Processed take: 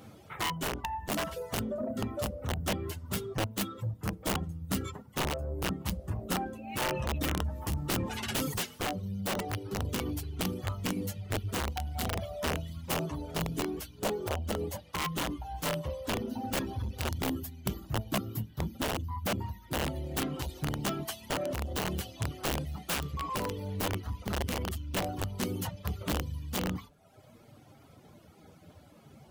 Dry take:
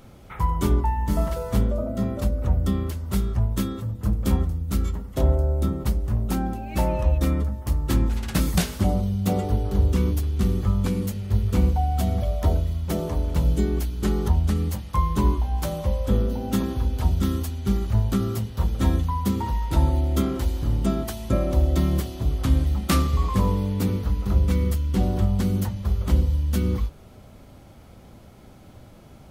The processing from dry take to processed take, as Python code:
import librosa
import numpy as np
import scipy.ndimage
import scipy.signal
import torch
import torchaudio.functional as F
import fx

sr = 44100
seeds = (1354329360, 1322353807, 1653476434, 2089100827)

y = fx.chorus_voices(x, sr, voices=4, hz=0.2, base_ms=10, depth_ms=3.7, mix_pct=40)
y = fx.dereverb_blind(y, sr, rt60_s=0.93)
y = fx.spec_box(y, sr, start_s=17.2, length_s=2.67, low_hz=380.0, high_hz=11000.0, gain_db=-8)
y = 10.0 ** (-24.0 / 20.0) * np.tanh(y / 10.0 ** (-24.0 / 20.0))
y = scipy.signal.sosfilt(scipy.signal.butter(2, 90.0, 'highpass', fs=sr, output='sos'), y)
y = (np.mod(10.0 ** (25.0 / 20.0) * y + 1.0, 2.0) - 1.0) / 10.0 ** (25.0 / 20.0)
y = fx.peak_eq(y, sr, hz=570.0, db=9.5, octaves=1.0, at=(13.98, 14.92))
y = fx.rider(y, sr, range_db=4, speed_s=0.5)
y = fx.dynamic_eq(y, sr, hz=2900.0, q=6.4, threshold_db=-58.0, ratio=4.0, max_db=6)
y = fx.env_flatten(y, sr, amount_pct=50, at=(6.81, 8.54))